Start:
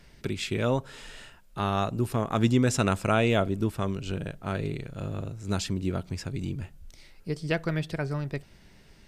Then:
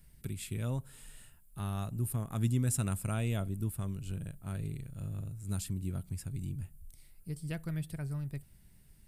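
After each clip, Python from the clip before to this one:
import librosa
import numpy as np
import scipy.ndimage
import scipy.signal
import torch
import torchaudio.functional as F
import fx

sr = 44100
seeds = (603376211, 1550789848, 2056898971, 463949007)

y = fx.curve_eq(x, sr, hz=(130.0, 430.0, 6000.0, 9600.0), db=(0, -14, -10, 10))
y = y * librosa.db_to_amplitude(-3.5)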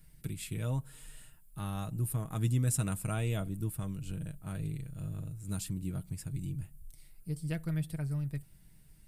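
y = x + 0.44 * np.pad(x, (int(6.4 * sr / 1000.0), 0))[:len(x)]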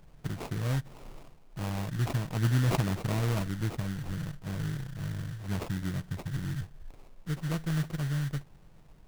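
y = fx.sample_hold(x, sr, seeds[0], rate_hz=1700.0, jitter_pct=20)
y = y * librosa.db_to_amplitude(3.5)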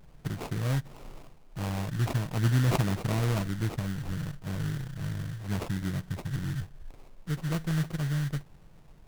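y = fx.vibrato(x, sr, rate_hz=0.4, depth_cents=24.0)
y = y * librosa.db_to_amplitude(1.5)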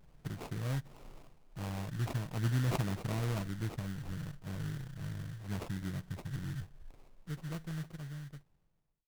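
y = fx.fade_out_tail(x, sr, length_s=2.25)
y = y * librosa.db_to_amplitude(-7.0)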